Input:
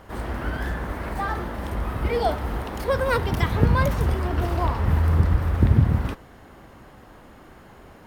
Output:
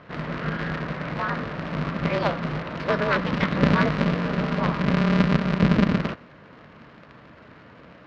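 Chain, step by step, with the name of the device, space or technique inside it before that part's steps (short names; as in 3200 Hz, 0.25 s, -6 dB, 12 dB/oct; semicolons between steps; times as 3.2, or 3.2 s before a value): ring modulator pedal into a guitar cabinet (polarity switched at an audio rate 100 Hz; speaker cabinet 98–4100 Hz, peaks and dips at 370 Hz -8 dB, 810 Hz -9 dB, 3400 Hz -4 dB); gain +2 dB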